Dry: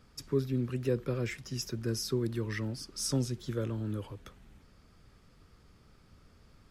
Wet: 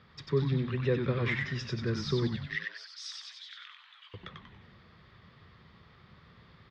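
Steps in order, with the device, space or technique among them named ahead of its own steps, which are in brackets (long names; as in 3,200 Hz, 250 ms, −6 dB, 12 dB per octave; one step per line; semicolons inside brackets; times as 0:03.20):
0:02.27–0:04.14: Bessel high-pass filter 2,400 Hz, order 6
frequency-shifting delay pedal into a guitar cabinet (echo with shifted repeats 94 ms, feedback 44%, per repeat −130 Hz, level −3.5 dB; loudspeaker in its box 78–4,200 Hz, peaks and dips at 160 Hz +5 dB, 280 Hz −8 dB, 1,100 Hz +5 dB, 1,900 Hz +9 dB, 3,600 Hz +8 dB)
level +2 dB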